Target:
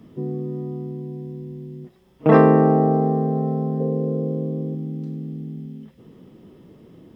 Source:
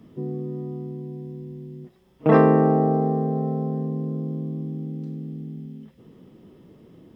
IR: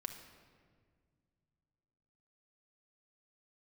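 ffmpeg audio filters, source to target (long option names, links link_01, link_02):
-filter_complex "[0:a]asettb=1/sr,asplit=3[link_01][link_02][link_03];[link_01]atrim=end=3.804[link_04];[link_02]atrim=start=3.8:end=4.75,asetpts=PTS-STARTPTS,afade=type=in:duration=0.004:curve=qsin,afade=type=out:start_time=0.946:duration=0.004:curve=qsin,equalizer=frequency=500:width=2.6:gain=13[link_05];[link_03]atrim=start=4.746[link_06];[link_04][link_05]acrossfade=duration=0.004:curve1=hsin:curve2=qsin[link_07];[link_07][link_06]acrossfade=duration=0.004:curve1=qsin:curve2=hsin,volume=2.5dB"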